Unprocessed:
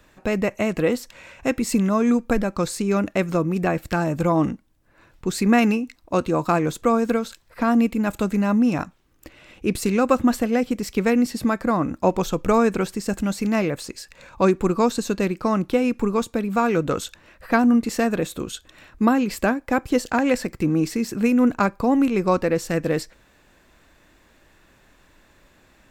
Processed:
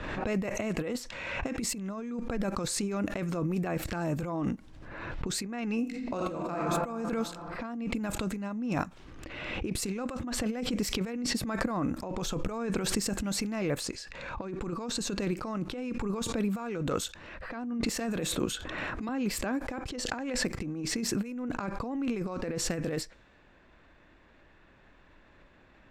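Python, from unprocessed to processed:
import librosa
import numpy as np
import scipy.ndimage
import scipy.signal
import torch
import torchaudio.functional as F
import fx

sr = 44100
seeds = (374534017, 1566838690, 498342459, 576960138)

y = fx.reverb_throw(x, sr, start_s=5.8, length_s=0.77, rt60_s=1.9, drr_db=0.0)
y = fx.band_squash(y, sr, depth_pct=100, at=(17.98, 19.09))
y = fx.over_compress(y, sr, threshold_db=-24.0, ratio=-0.5)
y = fx.env_lowpass(y, sr, base_hz=2800.0, full_db=-19.5)
y = fx.pre_swell(y, sr, db_per_s=31.0)
y = F.gain(torch.from_numpy(y), -8.5).numpy()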